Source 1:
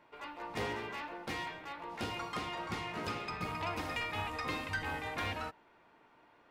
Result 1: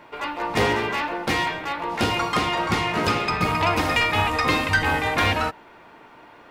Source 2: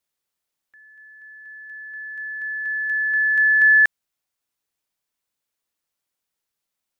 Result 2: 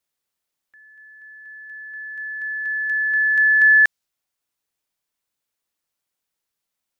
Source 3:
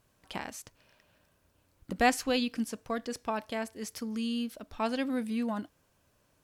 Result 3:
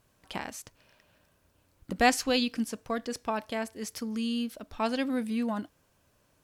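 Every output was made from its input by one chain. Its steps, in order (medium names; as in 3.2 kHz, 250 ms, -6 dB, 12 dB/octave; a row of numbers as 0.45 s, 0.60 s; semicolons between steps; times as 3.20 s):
dynamic bell 5.1 kHz, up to +4 dB, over -42 dBFS, Q 1; peak normalisation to -9 dBFS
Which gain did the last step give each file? +16.5 dB, +0.5 dB, +1.5 dB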